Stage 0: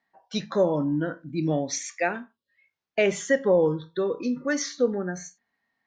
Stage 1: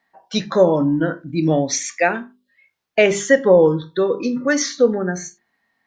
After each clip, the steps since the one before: hum notches 50/100/150/200/250/300/350/400 Hz; trim +8.5 dB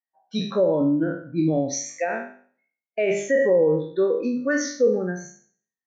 spectral sustain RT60 0.75 s; loudness maximiser +7 dB; spectral contrast expander 1.5:1; trim -9 dB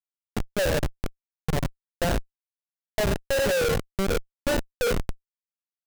static phaser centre 1.5 kHz, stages 8; de-hum 81.24 Hz, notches 13; Schmitt trigger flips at -23 dBFS; trim +4.5 dB

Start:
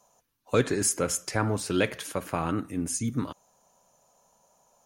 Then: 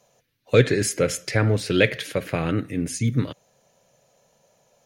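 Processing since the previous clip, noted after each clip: graphic EQ 125/500/1000/2000/4000/8000 Hz +11/+9/-9/+11/+7/-4 dB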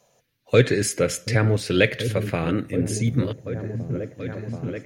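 delay with an opening low-pass 732 ms, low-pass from 200 Hz, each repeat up 1 oct, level -6 dB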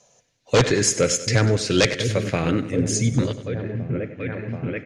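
wavefolder -10.5 dBFS; low-pass sweep 6.7 kHz -> 2.4 kHz, 3.12–3.82 s; feedback delay 97 ms, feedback 55%, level -14.5 dB; trim +1.5 dB

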